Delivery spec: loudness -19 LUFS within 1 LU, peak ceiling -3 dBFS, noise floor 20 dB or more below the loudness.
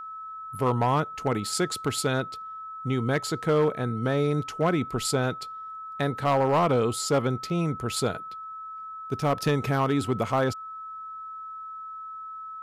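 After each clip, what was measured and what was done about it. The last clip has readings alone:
clipped 0.8%; flat tops at -16.5 dBFS; steady tone 1300 Hz; tone level -36 dBFS; loudness -26.5 LUFS; peak -16.5 dBFS; loudness target -19.0 LUFS
-> clip repair -16.5 dBFS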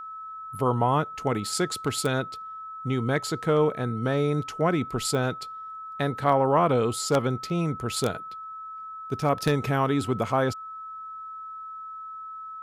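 clipped 0.0%; steady tone 1300 Hz; tone level -36 dBFS
-> notch 1300 Hz, Q 30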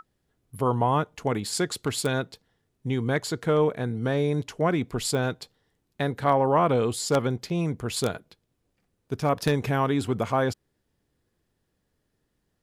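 steady tone none; loudness -26.0 LUFS; peak -7.5 dBFS; loudness target -19.0 LUFS
-> gain +7 dB; limiter -3 dBFS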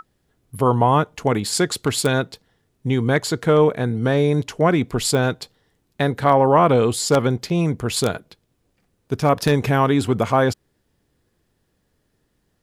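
loudness -19.5 LUFS; peak -3.0 dBFS; noise floor -69 dBFS

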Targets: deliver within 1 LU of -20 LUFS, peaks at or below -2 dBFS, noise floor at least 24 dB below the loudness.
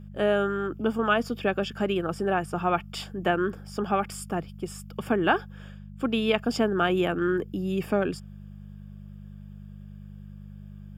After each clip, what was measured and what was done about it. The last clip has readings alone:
hum 50 Hz; harmonics up to 200 Hz; hum level -40 dBFS; loudness -27.5 LUFS; peak -8.0 dBFS; loudness target -20.0 LUFS
-> de-hum 50 Hz, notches 4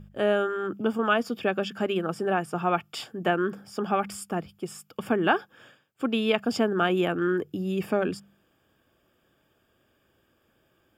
hum none; loudness -27.5 LUFS; peak -7.5 dBFS; loudness target -20.0 LUFS
-> gain +7.5 dB; limiter -2 dBFS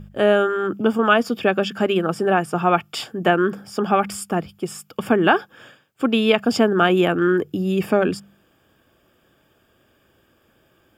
loudness -20.0 LUFS; peak -2.0 dBFS; noise floor -61 dBFS

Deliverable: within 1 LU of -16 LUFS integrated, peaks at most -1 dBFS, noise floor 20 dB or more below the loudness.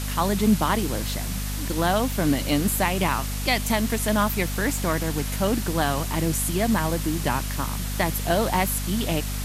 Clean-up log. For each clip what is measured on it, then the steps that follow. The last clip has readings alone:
hum 50 Hz; harmonics up to 250 Hz; hum level -27 dBFS; noise floor -29 dBFS; noise floor target -44 dBFS; loudness -24.0 LUFS; peak -7.5 dBFS; loudness target -16.0 LUFS
-> de-hum 50 Hz, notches 5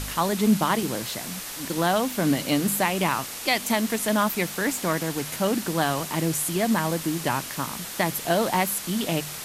hum none; noise floor -36 dBFS; noise floor target -45 dBFS
-> noise print and reduce 9 dB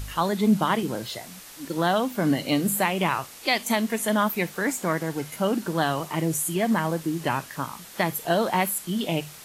noise floor -44 dBFS; noise floor target -46 dBFS
-> noise print and reduce 6 dB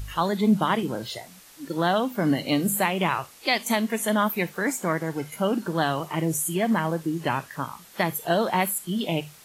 noise floor -50 dBFS; loudness -25.5 LUFS; peak -9.0 dBFS; loudness target -16.0 LUFS
-> gain +9.5 dB; limiter -1 dBFS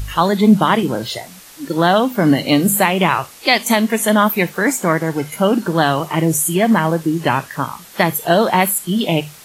loudness -16.0 LUFS; peak -1.0 dBFS; noise floor -40 dBFS

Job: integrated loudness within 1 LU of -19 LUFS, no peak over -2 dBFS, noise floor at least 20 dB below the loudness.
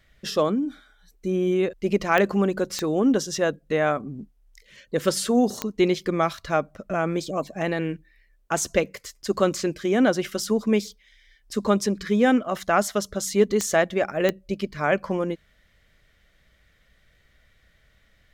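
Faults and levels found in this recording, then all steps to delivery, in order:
clicks 5; loudness -24.0 LUFS; peak -6.0 dBFS; loudness target -19.0 LUFS
-> de-click; gain +5 dB; limiter -2 dBFS

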